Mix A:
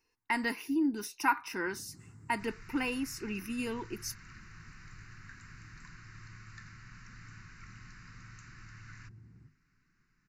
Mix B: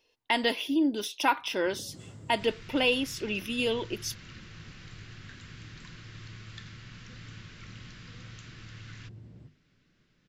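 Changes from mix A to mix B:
first sound +5.5 dB
master: remove phaser with its sweep stopped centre 1,400 Hz, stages 4

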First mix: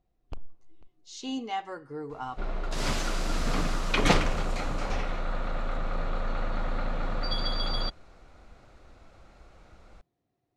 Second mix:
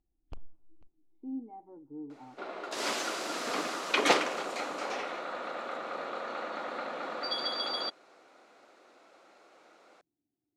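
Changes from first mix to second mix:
speech: add formant resonators in series u
first sound −5.5 dB
second sound: add high-pass filter 300 Hz 24 dB per octave

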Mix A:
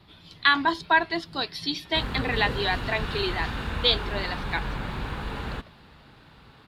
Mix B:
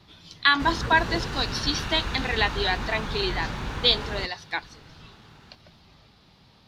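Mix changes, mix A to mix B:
background: entry −1.35 s
master: add parametric band 6,000 Hz +12.5 dB 0.49 octaves

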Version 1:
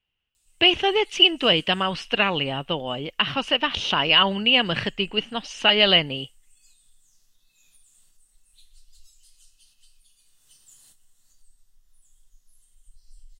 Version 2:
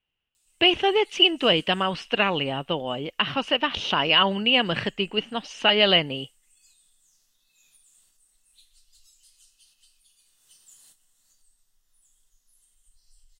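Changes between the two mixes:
speech: add spectral tilt −1.5 dB per octave
master: add low-shelf EQ 140 Hz −12 dB

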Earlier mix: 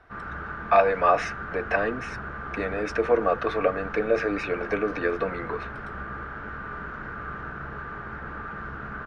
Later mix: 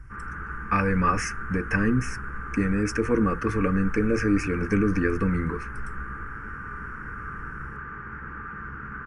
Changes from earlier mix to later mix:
speech: remove three-way crossover with the lows and the highs turned down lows −22 dB, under 390 Hz, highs −19 dB, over 3,400 Hz
master: add phaser with its sweep stopped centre 1,600 Hz, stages 4

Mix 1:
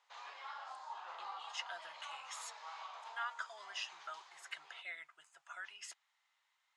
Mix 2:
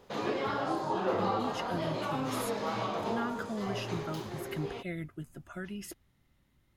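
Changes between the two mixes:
background +11.5 dB
master: remove elliptic band-pass filter 870–7,800 Hz, stop band 50 dB

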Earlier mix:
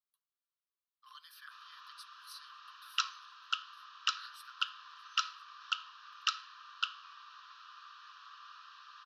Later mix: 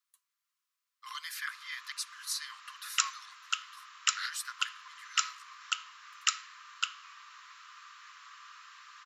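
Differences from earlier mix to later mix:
speech +11.5 dB
master: remove phaser with its sweep stopped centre 2,100 Hz, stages 6

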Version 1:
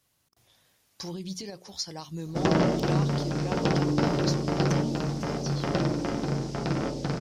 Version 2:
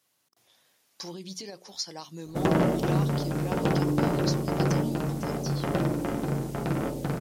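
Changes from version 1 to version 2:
speech: add Bessel high-pass filter 260 Hz, order 2
background: remove low-pass with resonance 5,300 Hz, resonance Q 3.4

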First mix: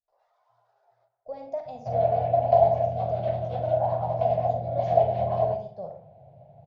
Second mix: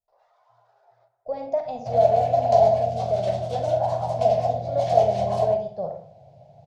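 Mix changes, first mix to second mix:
speech +7.5 dB
first sound +6.5 dB
second sound: remove high-frequency loss of the air 460 metres

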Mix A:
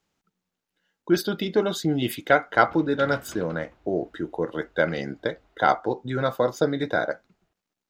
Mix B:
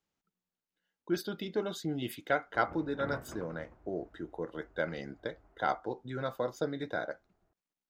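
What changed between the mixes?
speech −11.0 dB
background: add Gaussian smoothing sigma 5 samples

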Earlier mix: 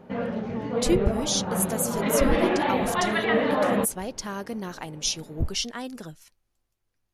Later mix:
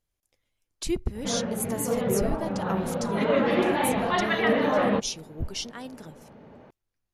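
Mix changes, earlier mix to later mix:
speech −5.0 dB
background: entry +1.15 s

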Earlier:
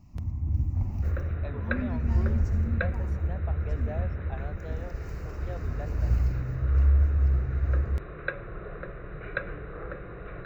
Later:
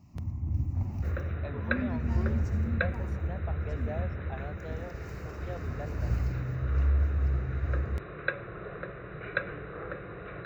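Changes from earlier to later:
second sound: add high-shelf EQ 3,100 Hz +7 dB
master: add high-pass filter 81 Hz 12 dB per octave

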